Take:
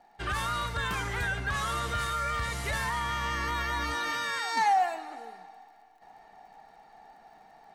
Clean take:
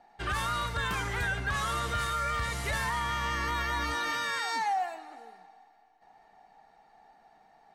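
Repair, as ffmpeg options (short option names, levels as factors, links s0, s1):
-af "adeclick=t=4,asetnsamples=n=441:p=0,asendcmd='4.57 volume volume -5.5dB',volume=1"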